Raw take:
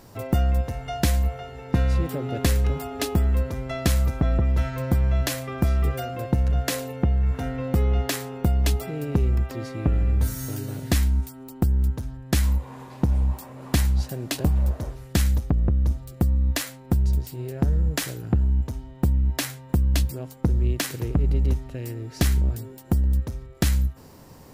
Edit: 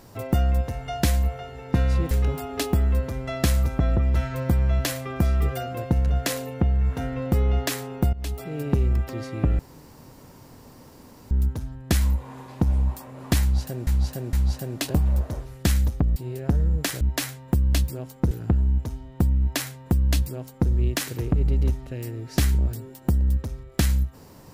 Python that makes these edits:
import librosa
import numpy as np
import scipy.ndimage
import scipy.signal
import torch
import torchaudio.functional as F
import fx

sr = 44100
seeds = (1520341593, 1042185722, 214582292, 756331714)

y = fx.edit(x, sr, fx.cut(start_s=2.11, length_s=0.42),
    fx.fade_in_from(start_s=8.55, length_s=0.47, floor_db=-19.0),
    fx.room_tone_fill(start_s=10.01, length_s=1.72),
    fx.repeat(start_s=13.83, length_s=0.46, count=3),
    fx.cut(start_s=15.66, length_s=1.63),
    fx.duplicate(start_s=19.22, length_s=1.3, to_s=18.14), tone=tone)